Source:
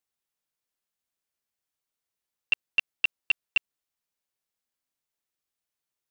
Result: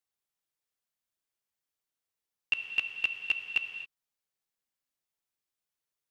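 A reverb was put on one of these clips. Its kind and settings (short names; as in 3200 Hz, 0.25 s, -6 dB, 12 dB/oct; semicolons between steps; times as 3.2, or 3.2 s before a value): non-linear reverb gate 0.29 s flat, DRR 6.5 dB; gain -3.5 dB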